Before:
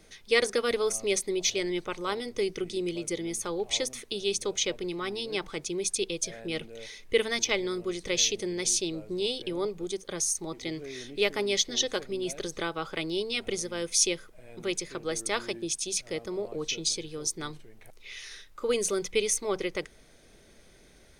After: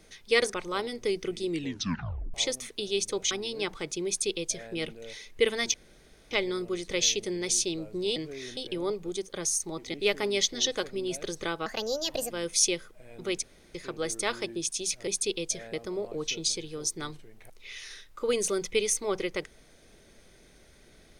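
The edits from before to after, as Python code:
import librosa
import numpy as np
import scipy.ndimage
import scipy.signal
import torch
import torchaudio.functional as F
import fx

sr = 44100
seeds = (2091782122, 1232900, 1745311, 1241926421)

y = fx.edit(x, sr, fx.cut(start_s=0.54, length_s=1.33),
    fx.tape_stop(start_s=2.82, length_s=0.85),
    fx.cut(start_s=4.64, length_s=0.4),
    fx.duplicate(start_s=5.8, length_s=0.66, to_s=16.14),
    fx.insert_room_tone(at_s=7.47, length_s=0.57),
    fx.move(start_s=10.69, length_s=0.41, to_s=9.32),
    fx.speed_span(start_s=12.82, length_s=0.87, speed=1.35),
    fx.insert_room_tone(at_s=14.81, length_s=0.32), tone=tone)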